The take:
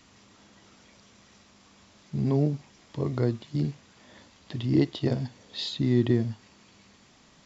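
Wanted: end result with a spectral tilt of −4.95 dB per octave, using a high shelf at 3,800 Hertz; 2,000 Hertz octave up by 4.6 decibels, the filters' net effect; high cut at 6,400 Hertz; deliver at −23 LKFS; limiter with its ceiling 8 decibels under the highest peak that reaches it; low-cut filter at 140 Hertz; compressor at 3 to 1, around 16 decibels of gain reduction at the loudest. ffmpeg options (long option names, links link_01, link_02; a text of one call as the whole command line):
ffmpeg -i in.wav -af "highpass=140,lowpass=6400,equalizer=frequency=2000:width_type=o:gain=6.5,highshelf=frequency=3800:gain=-5.5,acompressor=threshold=-41dB:ratio=3,volume=24dB,alimiter=limit=-10dB:level=0:latency=1" out.wav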